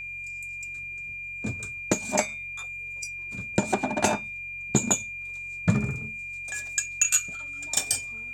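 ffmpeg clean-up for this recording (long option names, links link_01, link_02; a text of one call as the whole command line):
ffmpeg -i in.wav -af "bandreject=frequency=45.6:width_type=h:width=4,bandreject=frequency=91.2:width_type=h:width=4,bandreject=frequency=136.8:width_type=h:width=4,bandreject=frequency=2400:width=30" out.wav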